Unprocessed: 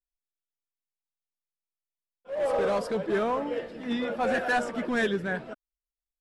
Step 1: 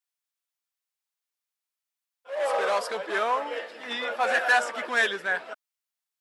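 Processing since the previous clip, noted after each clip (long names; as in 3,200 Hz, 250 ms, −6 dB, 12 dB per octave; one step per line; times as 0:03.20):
high-pass filter 820 Hz 12 dB per octave
level +7 dB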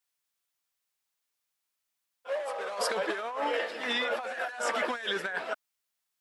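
compressor whose output falls as the input rises −33 dBFS, ratio −1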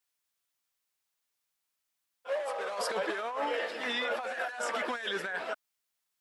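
brickwall limiter −23.5 dBFS, peak gain reduction 6.5 dB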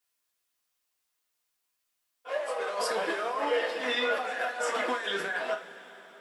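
coupled-rooms reverb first 0.25 s, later 4.5 s, from −22 dB, DRR −0.5 dB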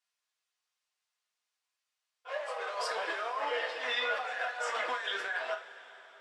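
band-pass filter 640–6,600 Hz
level −2 dB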